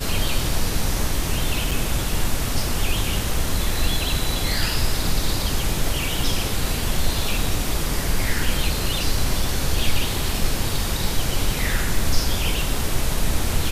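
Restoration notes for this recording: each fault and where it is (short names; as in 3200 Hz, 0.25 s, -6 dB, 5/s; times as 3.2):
1.71–1.72 gap 5.2 ms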